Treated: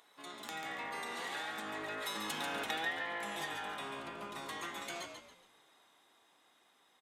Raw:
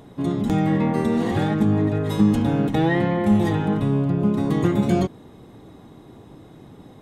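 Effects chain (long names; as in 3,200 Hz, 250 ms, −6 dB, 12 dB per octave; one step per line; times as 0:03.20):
source passing by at 0:02.66, 6 m/s, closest 1.5 metres
high-pass filter 1,400 Hz 12 dB per octave
downward compressor 4 to 1, threshold −54 dBFS, peak gain reduction 21.5 dB
on a send: echo with shifted repeats 140 ms, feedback 35%, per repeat −55 Hz, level −6.5 dB
on the sum: level +14.5 dB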